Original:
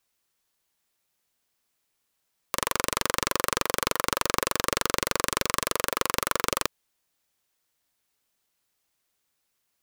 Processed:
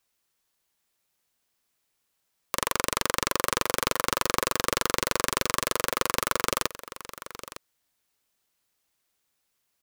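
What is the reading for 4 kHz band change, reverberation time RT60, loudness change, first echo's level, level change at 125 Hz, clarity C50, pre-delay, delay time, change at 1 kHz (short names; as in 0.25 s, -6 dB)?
0.0 dB, none, 0.0 dB, -14.5 dB, +0.5 dB, none, none, 0.908 s, 0.0 dB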